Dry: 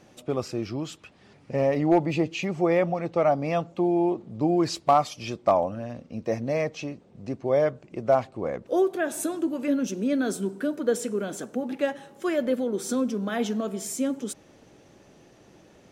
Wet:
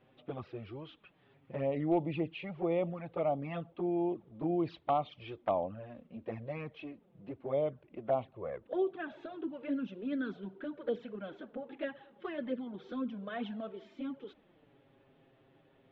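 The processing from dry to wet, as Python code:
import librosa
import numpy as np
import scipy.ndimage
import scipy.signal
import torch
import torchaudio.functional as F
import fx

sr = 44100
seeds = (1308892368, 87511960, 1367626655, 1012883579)

y = fx.env_flanger(x, sr, rest_ms=8.1, full_db=-18.5)
y = scipy.signal.sosfilt(scipy.signal.ellip(4, 1.0, 70, 3500.0, 'lowpass', fs=sr, output='sos'), y)
y = F.gain(torch.from_numpy(y), -7.5).numpy()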